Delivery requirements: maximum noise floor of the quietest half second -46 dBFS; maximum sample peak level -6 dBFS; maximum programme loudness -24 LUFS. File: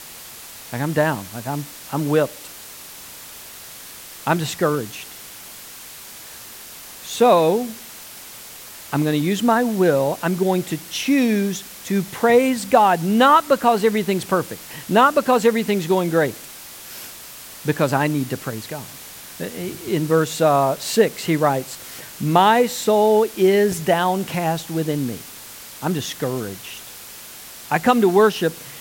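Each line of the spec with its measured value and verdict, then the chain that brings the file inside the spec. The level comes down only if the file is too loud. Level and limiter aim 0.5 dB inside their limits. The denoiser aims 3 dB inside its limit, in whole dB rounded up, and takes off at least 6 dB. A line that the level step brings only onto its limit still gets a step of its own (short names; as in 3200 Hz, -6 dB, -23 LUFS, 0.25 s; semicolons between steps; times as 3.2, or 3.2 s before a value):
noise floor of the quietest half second -39 dBFS: fail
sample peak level -1.5 dBFS: fail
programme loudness -19.5 LUFS: fail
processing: denoiser 6 dB, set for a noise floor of -39 dBFS; gain -5 dB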